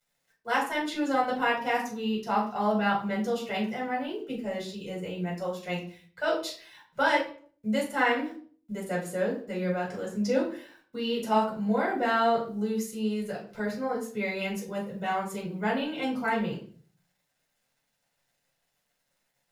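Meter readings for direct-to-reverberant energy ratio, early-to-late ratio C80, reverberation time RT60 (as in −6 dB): −5.0 dB, 11.5 dB, 0.45 s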